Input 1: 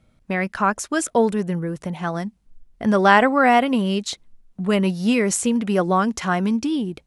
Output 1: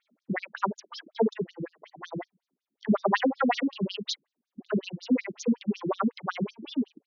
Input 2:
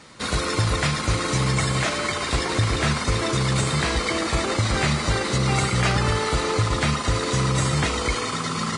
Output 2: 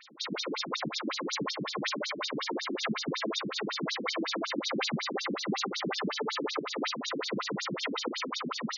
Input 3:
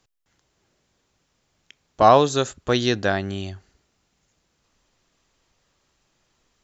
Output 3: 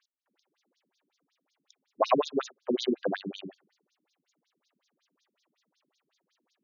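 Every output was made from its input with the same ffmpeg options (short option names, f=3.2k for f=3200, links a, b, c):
-af "asoftclip=type=tanh:threshold=-6.5dB,afftfilt=real='re*between(b*sr/1024,230*pow(5000/230,0.5+0.5*sin(2*PI*5.4*pts/sr))/1.41,230*pow(5000/230,0.5+0.5*sin(2*PI*5.4*pts/sr))*1.41)':imag='im*between(b*sr/1024,230*pow(5000/230,0.5+0.5*sin(2*PI*5.4*pts/sr))/1.41,230*pow(5000/230,0.5+0.5*sin(2*PI*5.4*pts/sr))*1.41)':win_size=1024:overlap=0.75"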